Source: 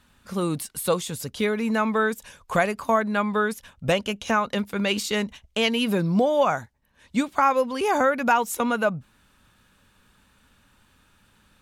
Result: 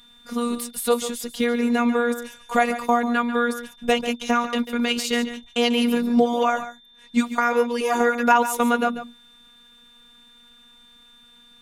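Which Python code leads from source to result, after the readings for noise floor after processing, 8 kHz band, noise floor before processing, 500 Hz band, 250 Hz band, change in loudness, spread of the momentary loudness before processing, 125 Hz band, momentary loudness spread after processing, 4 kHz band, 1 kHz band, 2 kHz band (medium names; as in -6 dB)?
-52 dBFS, +2.0 dB, -62 dBFS, +1.0 dB, +3.5 dB, +2.0 dB, 7 LU, under -10 dB, 8 LU, +2.0 dB, +2.0 dB, +1.5 dB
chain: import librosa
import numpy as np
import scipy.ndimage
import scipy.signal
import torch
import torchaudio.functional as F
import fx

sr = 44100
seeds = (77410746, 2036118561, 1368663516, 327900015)

y = x + 10.0 ** (-12.0 / 20.0) * np.pad(x, (int(142 * sr / 1000.0), 0))[:len(x)]
y = y + 10.0 ** (-49.0 / 20.0) * np.sin(2.0 * np.pi * 3500.0 * np.arange(len(y)) / sr)
y = fx.robotise(y, sr, hz=239.0)
y = F.gain(torch.from_numpy(y), 4.0).numpy()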